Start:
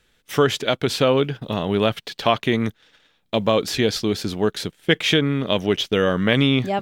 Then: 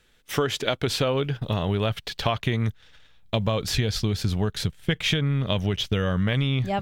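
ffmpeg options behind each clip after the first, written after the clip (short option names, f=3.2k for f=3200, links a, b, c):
-af "asubboost=boost=10.5:cutoff=99,acompressor=threshold=-20dB:ratio=6"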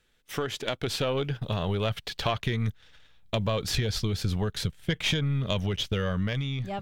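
-af "aeval=exprs='(tanh(3.98*val(0)+0.55)-tanh(0.55))/3.98':c=same,dynaudnorm=f=200:g=9:m=4.5dB,volume=-4.5dB"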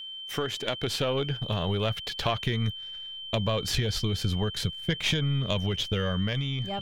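-af "aeval=exprs='val(0)+0.0141*sin(2*PI*3100*n/s)':c=same"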